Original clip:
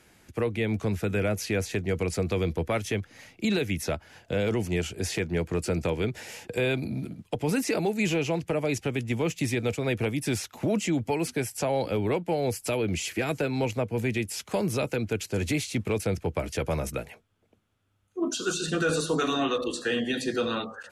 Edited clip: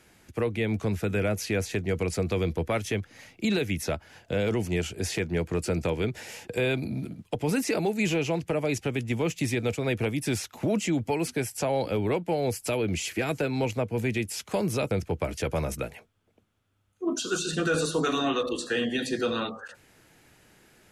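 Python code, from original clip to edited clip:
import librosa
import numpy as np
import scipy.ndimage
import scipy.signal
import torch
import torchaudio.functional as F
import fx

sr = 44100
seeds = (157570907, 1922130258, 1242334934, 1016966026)

y = fx.edit(x, sr, fx.cut(start_s=14.91, length_s=1.15), tone=tone)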